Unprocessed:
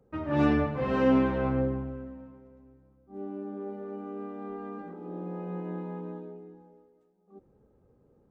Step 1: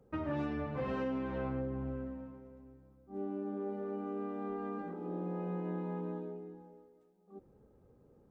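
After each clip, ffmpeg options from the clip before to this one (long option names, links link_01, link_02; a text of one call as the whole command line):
ffmpeg -i in.wav -af "acompressor=threshold=-33dB:ratio=12" out.wav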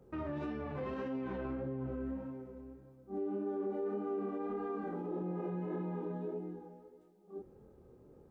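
ffmpeg -i in.wav -af "flanger=delay=22.5:depth=5.1:speed=1.7,alimiter=level_in=15dB:limit=-24dB:level=0:latency=1:release=67,volume=-15dB,equalizer=frequency=370:width=7:gain=7.5,volume=6.5dB" out.wav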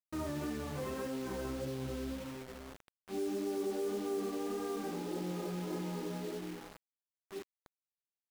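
ffmpeg -i in.wav -filter_complex "[0:a]asplit=2[link_01][link_02];[link_02]adelay=13,volume=-13dB[link_03];[link_01][link_03]amix=inputs=2:normalize=0,acrusher=bits=7:mix=0:aa=0.000001" out.wav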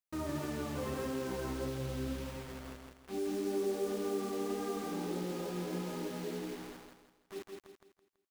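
ffmpeg -i in.wav -af "aecho=1:1:165|330|495|660|825:0.631|0.233|0.0864|0.032|0.0118" out.wav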